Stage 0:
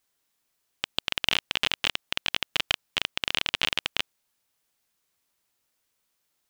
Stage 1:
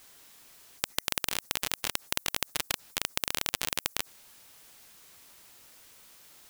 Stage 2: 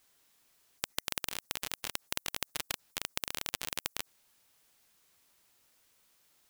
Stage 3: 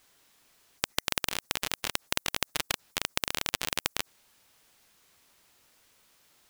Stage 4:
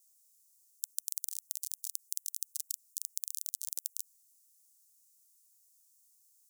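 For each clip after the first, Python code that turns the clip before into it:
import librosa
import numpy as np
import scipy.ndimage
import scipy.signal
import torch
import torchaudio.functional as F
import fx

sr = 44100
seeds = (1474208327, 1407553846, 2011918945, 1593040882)

y1 = fx.spectral_comp(x, sr, ratio=4.0)
y1 = F.gain(torch.from_numpy(y1), -1.5).numpy()
y2 = fx.upward_expand(y1, sr, threshold_db=-47.0, expansion=1.5)
y2 = F.gain(torch.from_numpy(y2), -4.5).numpy()
y3 = fx.high_shelf(y2, sr, hz=7300.0, db=-5.5)
y3 = F.gain(torch.from_numpy(y3), 7.5).numpy()
y4 = scipy.signal.sosfilt(scipy.signal.cheby2(4, 80, 1200.0, 'highpass', fs=sr, output='sos'), y3)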